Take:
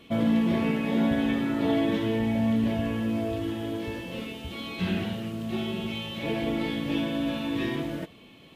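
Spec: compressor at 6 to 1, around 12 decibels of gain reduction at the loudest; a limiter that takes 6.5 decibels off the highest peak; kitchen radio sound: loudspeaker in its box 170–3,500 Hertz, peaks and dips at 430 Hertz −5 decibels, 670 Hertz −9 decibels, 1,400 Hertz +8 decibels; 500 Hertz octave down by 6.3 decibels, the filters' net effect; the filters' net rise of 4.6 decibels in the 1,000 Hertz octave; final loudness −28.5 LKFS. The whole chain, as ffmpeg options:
ffmpeg -i in.wav -af "equalizer=frequency=500:width_type=o:gain=-4,equalizer=frequency=1000:width_type=o:gain=7.5,acompressor=threshold=-34dB:ratio=6,alimiter=level_in=7.5dB:limit=-24dB:level=0:latency=1,volume=-7.5dB,highpass=170,equalizer=frequency=430:width_type=q:width=4:gain=-5,equalizer=frequency=670:width_type=q:width=4:gain=-9,equalizer=frequency=1400:width_type=q:width=4:gain=8,lowpass=frequency=3500:width=0.5412,lowpass=frequency=3500:width=1.3066,volume=12.5dB" out.wav

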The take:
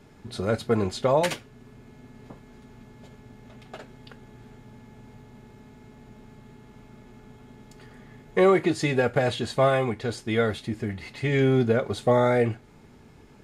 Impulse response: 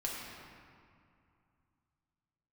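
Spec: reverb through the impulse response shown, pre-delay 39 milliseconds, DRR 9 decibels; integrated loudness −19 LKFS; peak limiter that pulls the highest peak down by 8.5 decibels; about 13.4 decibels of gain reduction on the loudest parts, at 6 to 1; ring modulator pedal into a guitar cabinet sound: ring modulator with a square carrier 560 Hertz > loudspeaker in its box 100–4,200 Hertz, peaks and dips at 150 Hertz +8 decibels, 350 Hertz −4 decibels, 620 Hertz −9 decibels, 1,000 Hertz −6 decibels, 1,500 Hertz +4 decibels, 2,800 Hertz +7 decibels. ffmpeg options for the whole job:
-filter_complex "[0:a]acompressor=threshold=-31dB:ratio=6,alimiter=level_in=4.5dB:limit=-24dB:level=0:latency=1,volume=-4.5dB,asplit=2[link_01][link_02];[1:a]atrim=start_sample=2205,adelay=39[link_03];[link_02][link_03]afir=irnorm=-1:irlink=0,volume=-12dB[link_04];[link_01][link_04]amix=inputs=2:normalize=0,aeval=exprs='val(0)*sgn(sin(2*PI*560*n/s))':channel_layout=same,highpass=100,equalizer=frequency=150:width_type=q:width=4:gain=8,equalizer=frequency=350:width_type=q:width=4:gain=-4,equalizer=frequency=620:width_type=q:width=4:gain=-9,equalizer=frequency=1000:width_type=q:width=4:gain=-6,equalizer=frequency=1500:width_type=q:width=4:gain=4,equalizer=frequency=2800:width_type=q:width=4:gain=7,lowpass=frequency=4200:width=0.5412,lowpass=frequency=4200:width=1.3066,volume=21dB"

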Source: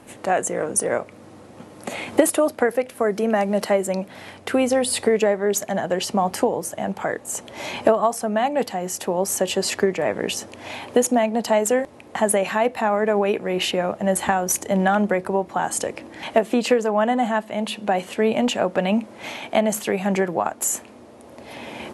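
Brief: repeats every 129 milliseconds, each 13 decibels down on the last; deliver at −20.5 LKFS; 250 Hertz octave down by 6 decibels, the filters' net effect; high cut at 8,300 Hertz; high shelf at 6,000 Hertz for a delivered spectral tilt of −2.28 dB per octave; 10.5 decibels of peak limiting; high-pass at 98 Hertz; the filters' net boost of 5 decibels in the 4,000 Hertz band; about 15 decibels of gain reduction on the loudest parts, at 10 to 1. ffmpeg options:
ffmpeg -i in.wav -af "highpass=98,lowpass=8300,equalizer=frequency=250:width_type=o:gain=-7.5,equalizer=frequency=4000:width_type=o:gain=5.5,highshelf=frequency=6000:gain=5,acompressor=threshold=-28dB:ratio=10,alimiter=limit=-23dB:level=0:latency=1,aecho=1:1:129|258|387:0.224|0.0493|0.0108,volume=13dB" out.wav

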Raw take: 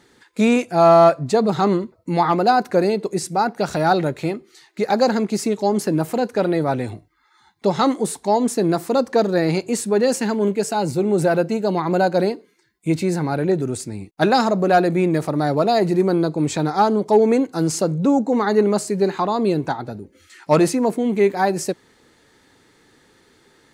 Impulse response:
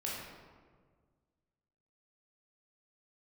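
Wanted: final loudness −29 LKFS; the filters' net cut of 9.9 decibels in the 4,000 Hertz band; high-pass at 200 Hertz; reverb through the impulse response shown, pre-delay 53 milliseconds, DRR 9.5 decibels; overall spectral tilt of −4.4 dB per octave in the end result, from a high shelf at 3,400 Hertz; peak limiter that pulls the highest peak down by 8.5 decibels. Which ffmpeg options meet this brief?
-filter_complex "[0:a]highpass=200,highshelf=frequency=3400:gain=-6.5,equalizer=frequency=4000:width_type=o:gain=-7,alimiter=limit=-13dB:level=0:latency=1,asplit=2[link_01][link_02];[1:a]atrim=start_sample=2205,adelay=53[link_03];[link_02][link_03]afir=irnorm=-1:irlink=0,volume=-12dB[link_04];[link_01][link_04]amix=inputs=2:normalize=0,volume=-6.5dB"

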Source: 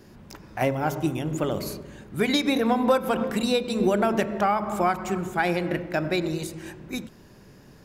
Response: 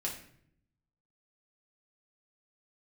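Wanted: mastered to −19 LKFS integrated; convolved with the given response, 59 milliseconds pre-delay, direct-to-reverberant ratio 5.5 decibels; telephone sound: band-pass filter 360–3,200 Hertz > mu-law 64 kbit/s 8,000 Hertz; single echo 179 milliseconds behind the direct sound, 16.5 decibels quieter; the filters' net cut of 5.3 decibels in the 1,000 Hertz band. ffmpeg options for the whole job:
-filter_complex "[0:a]equalizer=frequency=1000:width_type=o:gain=-7.5,aecho=1:1:179:0.15,asplit=2[link_01][link_02];[1:a]atrim=start_sample=2205,adelay=59[link_03];[link_02][link_03]afir=irnorm=-1:irlink=0,volume=-7.5dB[link_04];[link_01][link_04]amix=inputs=2:normalize=0,highpass=360,lowpass=3200,volume=9.5dB" -ar 8000 -c:a pcm_mulaw

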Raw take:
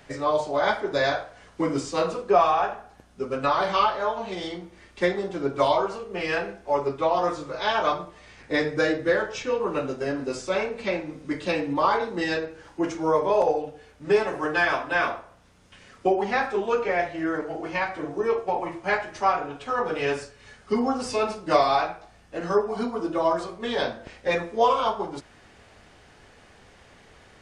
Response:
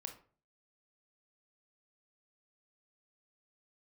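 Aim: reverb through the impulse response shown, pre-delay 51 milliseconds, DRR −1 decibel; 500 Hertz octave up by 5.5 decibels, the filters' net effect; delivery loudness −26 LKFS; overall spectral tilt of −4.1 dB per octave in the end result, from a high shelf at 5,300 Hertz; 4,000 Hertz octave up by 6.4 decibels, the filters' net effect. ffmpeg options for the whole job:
-filter_complex "[0:a]equalizer=frequency=500:width_type=o:gain=6.5,equalizer=frequency=4000:width_type=o:gain=4.5,highshelf=frequency=5300:gain=8.5,asplit=2[link_01][link_02];[1:a]atrim=start_sample=2205,adelay=51[link_03];[link_02][link_03]afir=irnorm=-1:irlink=0,volume=4.5dB[link_04];[link_01][link_04]amix=inputs=2:normalize=0,volume=-8dB"

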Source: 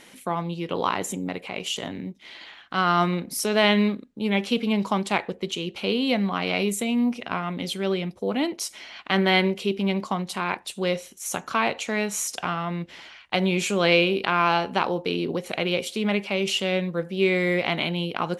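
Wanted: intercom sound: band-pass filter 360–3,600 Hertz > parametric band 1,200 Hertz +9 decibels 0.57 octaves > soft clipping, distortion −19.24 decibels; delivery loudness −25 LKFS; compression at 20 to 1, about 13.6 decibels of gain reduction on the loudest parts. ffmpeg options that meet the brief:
ffmpeg -i in.wav -af "acompressor=threshold=-28dB:ratio=20,highpass=360,lowpass=3600,equalizer=frequency=1200:width_type=o:width=0.57:gain=9,asoftclip=threshold=-18dB,volume=9.5dB" out.wav

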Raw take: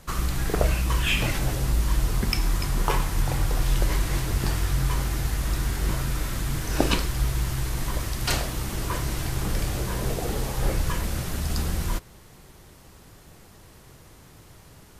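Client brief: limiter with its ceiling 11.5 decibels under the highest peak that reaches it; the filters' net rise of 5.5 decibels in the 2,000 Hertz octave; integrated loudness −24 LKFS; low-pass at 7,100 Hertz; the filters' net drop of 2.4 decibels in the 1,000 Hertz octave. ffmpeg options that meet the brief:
ffmpeg -i in.wav -af "lowpass=7100,equalizer=frequency=1000:width_type=o:gain=-5.5,equalizer=frequency=2000:width_type=o:gain=8.5,volume=4dB,alimiter=limit=-12dB:level=0:latency=1" out.wav

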